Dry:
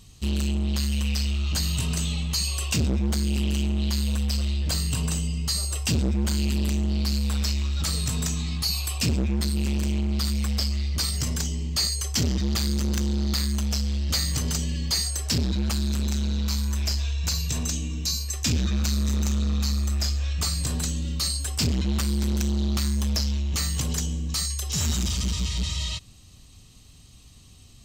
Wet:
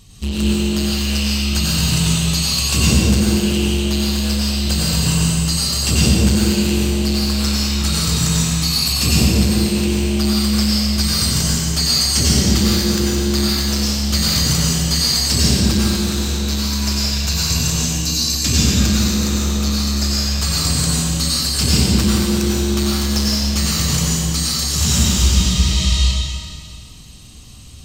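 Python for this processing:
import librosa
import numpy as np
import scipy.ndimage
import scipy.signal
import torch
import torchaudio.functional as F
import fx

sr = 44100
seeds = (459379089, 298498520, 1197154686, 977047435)

y = fx.rev_plate(x, sr, seeds[0], rt60_s=2.1, hf_ratio=0.95, predelay_ms=80, drr_db=-6.5)
y = y * librosa.db_to_amplitude(4.0)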